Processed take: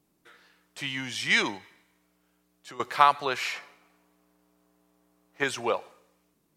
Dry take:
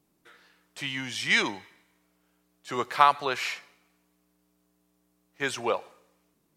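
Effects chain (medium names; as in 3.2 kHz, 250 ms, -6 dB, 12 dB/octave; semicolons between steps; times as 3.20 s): 1.57–2.80 s: compression 12:1, threshold -43 dBFS, peak gain reduction 17 dB; 3.54–5.44 s: peaking EQ 830 Hz +8 dB 2.8 oct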